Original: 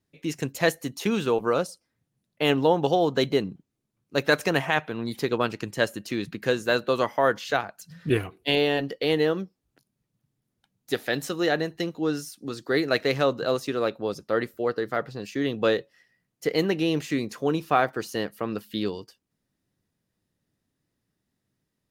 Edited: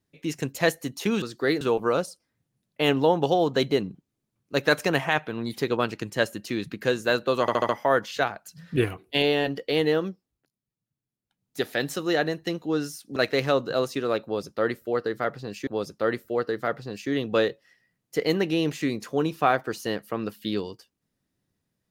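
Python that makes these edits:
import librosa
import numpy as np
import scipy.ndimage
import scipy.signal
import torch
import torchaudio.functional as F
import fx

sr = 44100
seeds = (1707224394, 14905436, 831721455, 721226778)

y = fx.edit(x, sr, fx.stutter(start_s=7.02, slice_s=0.07, count=5),
    fx.fade_down_up(start_s=9.4, length_s=1.58, db=-12.0, fade_s=0.39),
    fx.move(start_s=12.49, length_s=0.39, to_s=1.22),
    fx.repeat(start_s=13.96, length_s=1.43, count=2), tone=tone)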